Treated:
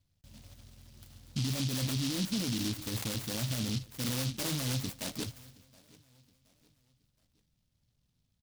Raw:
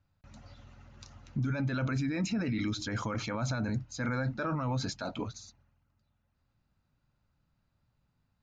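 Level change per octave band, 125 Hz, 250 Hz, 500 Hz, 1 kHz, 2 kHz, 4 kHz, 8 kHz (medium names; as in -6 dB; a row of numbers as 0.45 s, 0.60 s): -1.5 dB, -2.0 dB, -5.0 dB, -8.5 dB, -5.5 dB, +7.0 dB, no reading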